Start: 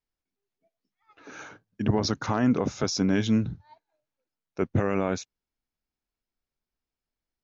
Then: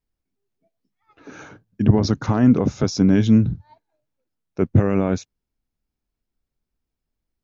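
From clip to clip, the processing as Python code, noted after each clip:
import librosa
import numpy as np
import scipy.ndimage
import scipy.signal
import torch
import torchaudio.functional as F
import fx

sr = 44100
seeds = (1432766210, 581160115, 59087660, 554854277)

y = fx.low_shelf(x, sr, hz=400.0, db=11.5)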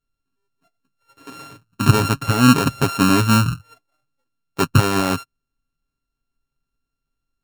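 y = np.r_[np.sort(x[:len(x) // 32 * 32].reshape(-1, 32), axis=1).ravel(), x[len(x) // 32 * 32:]]
y = y + 0.45 * np.pad(y, (int(7.3 * sr / 1000.0), 0))[:len(y)]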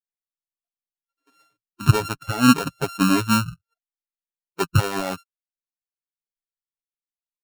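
y = fx.bin_expand(x, sr, power=2.0)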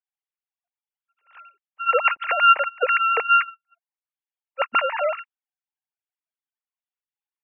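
y = fx.sine_speech(x, sr)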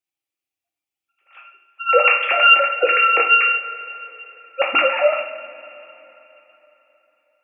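y = fx.graphic_eq_31(x, sr, hz=(315, 1000, 1600, 2500), db=(12, -8, -7, 7))
y = fx.rev_double_slope(y, sr, seeds[0], early_s=0.52, late_s=3.7, knee_db=-19, drr_db=-1.0)
y = y * librosa.db_to_amplitude(2.5)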